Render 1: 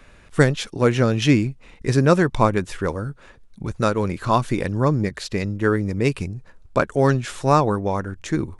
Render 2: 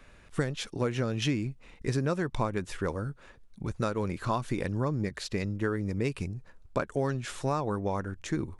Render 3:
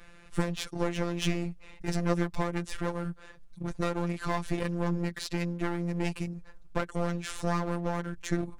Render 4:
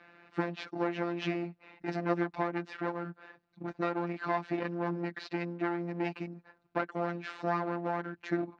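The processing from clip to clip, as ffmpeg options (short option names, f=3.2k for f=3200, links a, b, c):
-af "acompressor=threshold=-19dB:ratio=6,volume=-6dB"
-af "aeval=exprs='clip(val(0),-1,0.0133)':c=same,afftfilt=real='hypot(re,im)*cos(PI*b)':imag='0':win_size=1024:overlap=0.75,volume=5.5dB"
-af "highpass=240,equalizer=f=310:t=q:w=4:g=6,equalizer=f=480:t=q:w=4:g=-4,equalizer=f=750:t=q:w=4:g=7,equalizer=f=1.5k:t=q:w=4:g=3,equalizer=f=3.3k:t=q:w=4:g=-7,lowpass=f=3.9k:w=0.5412,lowpass=f=3.9k:w=1.3066,volume=-1.5dB"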